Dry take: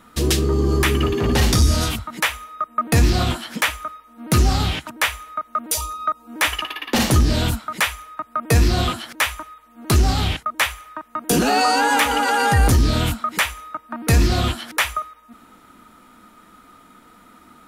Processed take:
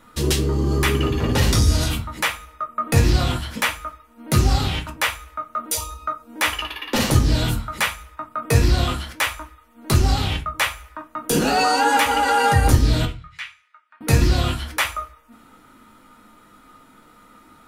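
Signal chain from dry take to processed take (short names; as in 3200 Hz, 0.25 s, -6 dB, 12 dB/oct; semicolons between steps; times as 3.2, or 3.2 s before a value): 13.05–14.01 ladder band-pass 2700 Hz, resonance 25%; reverb RT60 0.30 s, pre-delay 3 ms, DRR 3 dB; gain -3 dB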